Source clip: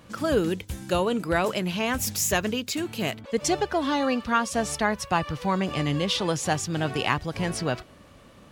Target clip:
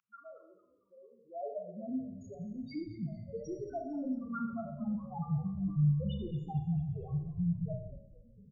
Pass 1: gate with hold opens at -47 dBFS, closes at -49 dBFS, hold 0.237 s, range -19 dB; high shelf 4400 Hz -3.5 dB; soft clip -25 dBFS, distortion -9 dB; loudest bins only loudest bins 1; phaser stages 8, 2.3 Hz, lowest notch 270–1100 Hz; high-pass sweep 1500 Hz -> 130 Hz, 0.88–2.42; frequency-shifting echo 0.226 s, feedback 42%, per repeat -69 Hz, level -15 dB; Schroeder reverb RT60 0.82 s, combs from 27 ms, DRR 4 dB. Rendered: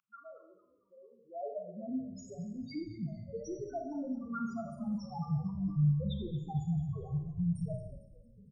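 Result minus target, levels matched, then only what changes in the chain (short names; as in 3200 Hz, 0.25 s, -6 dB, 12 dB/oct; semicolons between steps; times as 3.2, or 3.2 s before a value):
8000 Hz band +9.5 dB
change: high shelf 4400 Hz -11.5 dB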